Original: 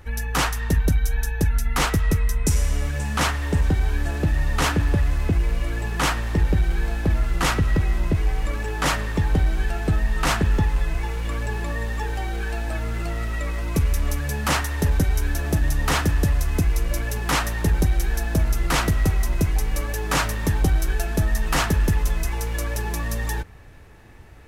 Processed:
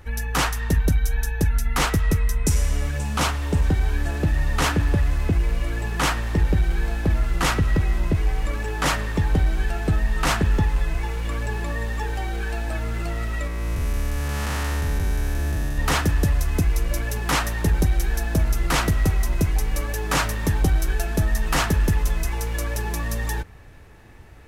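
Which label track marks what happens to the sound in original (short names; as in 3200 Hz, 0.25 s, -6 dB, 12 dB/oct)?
2.970000	3.620000	bell 1800 Hz -6 dB 0.33 oct
13.470000	15.780000	time blur width 0.384 s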